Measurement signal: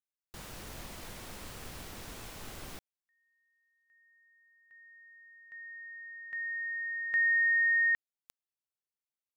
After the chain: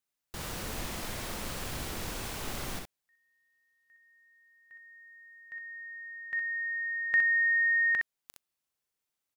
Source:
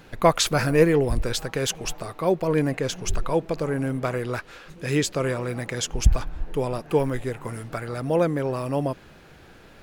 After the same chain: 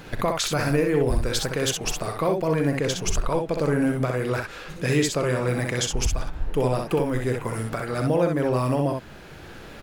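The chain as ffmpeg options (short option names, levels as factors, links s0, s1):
-filter_complex "[0:a]asplit=2[s0][s1];[s1]acompressor=threshold=0.0355:ratio=6:release=974:detection=rms,volume=1.12[s2];[s0][s2]amix=inputs=2:normalize=0,alimiter=limit=0.2:level=0:latency=1:release=268,aecho=1:1:40|63:0.2|0.596"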